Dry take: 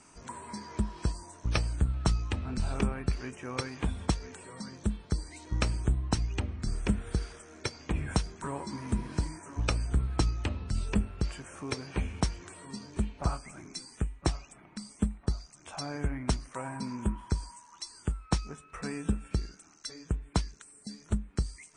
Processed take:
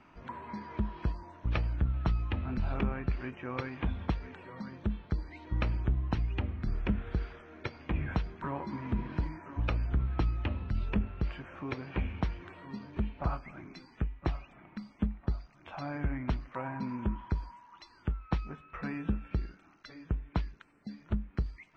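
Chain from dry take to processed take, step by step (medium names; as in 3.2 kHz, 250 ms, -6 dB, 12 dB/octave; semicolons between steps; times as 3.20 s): in parallel at +1 dB: peak limiter -24 dBFS, peak gain reduction 11 dB; on the sum: low-pass 3.2 kHz 24 dB/octave; band-stop 430 Hz, Q 12; trim -6 dB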